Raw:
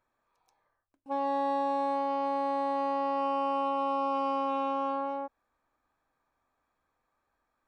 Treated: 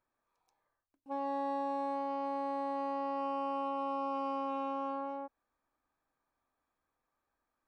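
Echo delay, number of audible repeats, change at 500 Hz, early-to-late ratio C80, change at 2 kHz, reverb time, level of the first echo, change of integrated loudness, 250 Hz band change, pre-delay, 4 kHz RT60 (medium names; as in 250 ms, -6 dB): no echo, no echo, -6.0 dB, no reverb, -7.0 dB, no reverb, no echo, -6.0 dB, -4.0 dB, no reverb, no reverb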